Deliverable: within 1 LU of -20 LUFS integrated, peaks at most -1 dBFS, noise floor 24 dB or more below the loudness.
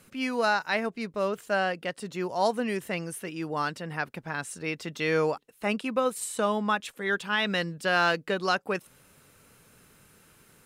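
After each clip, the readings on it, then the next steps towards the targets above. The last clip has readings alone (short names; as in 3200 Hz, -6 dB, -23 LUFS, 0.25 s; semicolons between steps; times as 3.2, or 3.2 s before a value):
loudness -29.0 LUFS; peak -14.0 dBFS; loudness target -20.0 LUFS
-> gain +9 dB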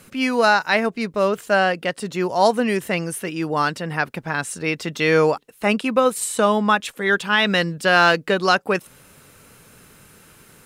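loudness -20.0 LUFS; peak -5.0 dBFS; noise floor -51 dBFS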